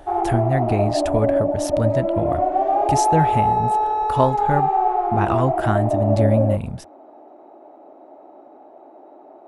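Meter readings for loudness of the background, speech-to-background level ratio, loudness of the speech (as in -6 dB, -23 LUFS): -20.5 LUFS, -3.0 dB, -23.5 LUFS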